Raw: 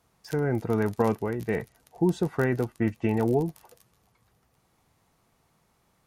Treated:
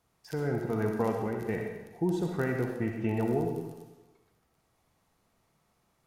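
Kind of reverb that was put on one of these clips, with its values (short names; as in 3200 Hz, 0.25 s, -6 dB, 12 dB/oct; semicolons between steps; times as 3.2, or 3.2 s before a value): digital reverb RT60 1.1 s, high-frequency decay 0.9×, pre-delay 20 ms, DRR 2 dB; gain -6 dB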